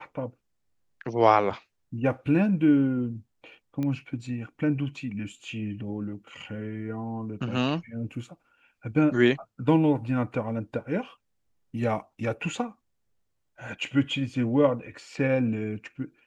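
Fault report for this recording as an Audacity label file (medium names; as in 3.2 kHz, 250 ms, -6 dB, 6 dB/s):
3.830000	3.830000	pop -20 dBFS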